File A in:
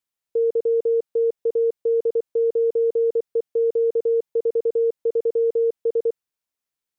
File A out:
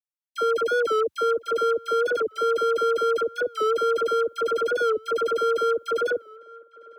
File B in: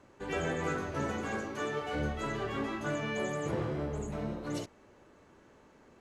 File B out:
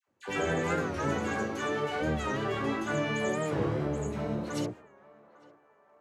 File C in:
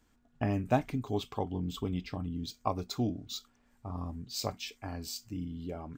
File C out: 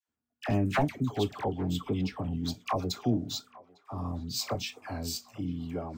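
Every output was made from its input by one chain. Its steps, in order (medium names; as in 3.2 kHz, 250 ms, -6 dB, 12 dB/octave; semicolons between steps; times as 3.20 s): high-pass 75 Hz 24 dB/octave; gate -55 dBFS, range -22 dB; wavefolder -20.5 dBFS; phase dispersion lows, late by 78 ms, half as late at 1 kHz; on a send: band-passed feedback delay 852 ms, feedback 61%, band-pass 980 Hz, level -20.5 dB; on the sum: warped record 45 rpm, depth 100 cents; trim +4 dB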